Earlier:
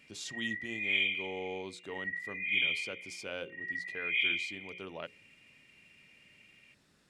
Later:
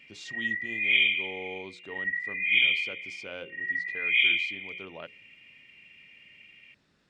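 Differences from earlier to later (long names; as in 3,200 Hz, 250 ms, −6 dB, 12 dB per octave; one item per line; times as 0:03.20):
speech: add low-pass filter 5,300 Hz 12 dB per octave
background +7.5 dB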